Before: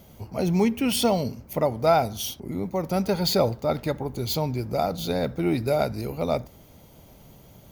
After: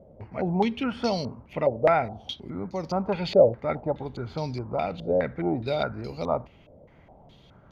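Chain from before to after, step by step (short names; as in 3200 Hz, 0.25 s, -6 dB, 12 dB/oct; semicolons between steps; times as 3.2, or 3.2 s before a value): stepped low-pass 4.8 Hz 570–4900 Hz; gain -4.5 dB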